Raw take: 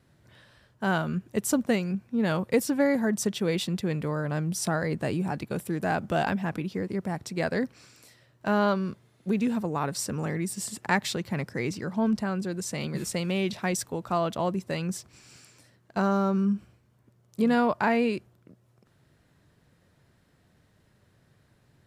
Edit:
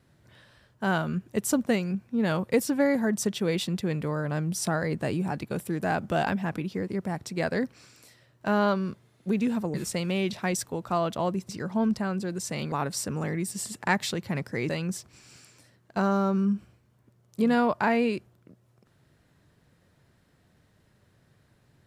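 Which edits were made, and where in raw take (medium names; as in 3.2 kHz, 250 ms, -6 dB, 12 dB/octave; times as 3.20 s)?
9.74–11.71 s: swap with 12.94–14.69 s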